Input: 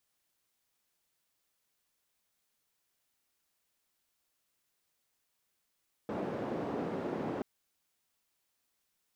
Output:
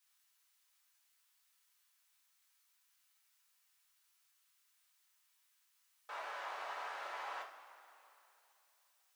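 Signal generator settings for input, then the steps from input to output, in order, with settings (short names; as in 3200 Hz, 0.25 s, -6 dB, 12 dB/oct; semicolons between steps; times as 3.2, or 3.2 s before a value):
noise band 200–450 Hz, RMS -36.5 dBFS 1.33 s
HPF 930 Hz 24 dB/oct; two-slope reverb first 0.33 s, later 3.1 s, from -18 dB, DRR -2 dB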